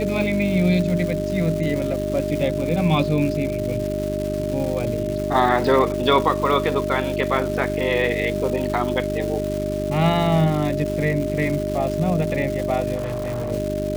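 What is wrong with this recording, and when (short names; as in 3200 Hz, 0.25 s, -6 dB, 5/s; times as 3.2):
crackle 450/s -27 dBFS
hum 50 Hz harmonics 8 -27 dBFS
tone 610 Hz -25 dBFS
12.95–13.52 clipped -22.5 dBFS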